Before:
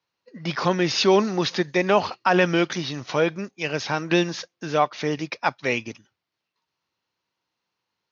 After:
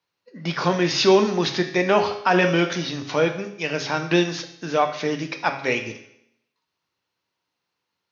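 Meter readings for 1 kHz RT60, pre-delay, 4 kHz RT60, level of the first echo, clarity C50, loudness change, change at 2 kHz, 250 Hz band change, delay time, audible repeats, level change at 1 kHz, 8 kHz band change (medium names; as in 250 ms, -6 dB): 0.75 s, 7 ms, 0.75 s, no echo, 9.5 dB, +1.5 dB, +1.5 dB, +1.0 dB, no echo, no echo, +0.5 dB, no reading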